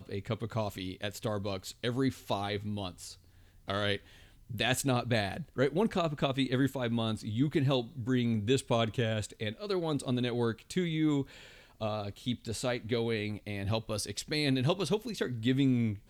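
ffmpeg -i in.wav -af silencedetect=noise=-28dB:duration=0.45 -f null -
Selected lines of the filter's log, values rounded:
silence_start: 2.88
silence_end: 3.70 | silence_duration: 0.82
silence_start: 3.95
silence_end: 4.60 | silence_duration: 0.65
silence_start: 11.21
silence_end: 11.83 | silence_duration: 0.62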